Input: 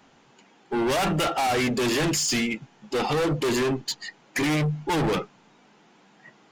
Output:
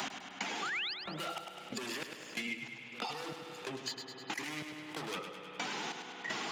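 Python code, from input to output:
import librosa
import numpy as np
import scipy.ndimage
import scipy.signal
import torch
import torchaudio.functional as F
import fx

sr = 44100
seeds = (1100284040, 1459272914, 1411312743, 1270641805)

y = fx.spec_quant(x, sr, step_db=15)
y = fx.step_gate(y, sr, bpm=185, pattern='x....xxx', floor_db=-60.0, edge_ms=4.5)
y = fx.gate_flip(y, sr, shuts_db=-31.0, range_db=-29)
y = fx.over_compress(y, sr, threshold_db=-55.0, ratio=-0.5)
y = fx.highpass(y, sr, hz=160.0, slope=6)
y = fx.rev_spring(y, sr, rt60_s=2.6, pass_ms=(59,), chirp_ms=40, drr_db=11.5)
y = fx.spec_paint(y, sr, seeds[0], shape='rise', start_s=0.62, length_s=0.32, low_hz=1100.0, high_hz=5200.0, level_db=-51.0)
y = fx.tilt_shelf(y, sr, db=-5.0, hz=780.0)
y = fx.echo_feedback(y, sr, ms=102, feedback_pct=43, wet_db=-8.5)
y = fx.band_squash(y, sr, depth_pct=100)
y = F.gain(torch.from_numpy(y), 14.5).numpy()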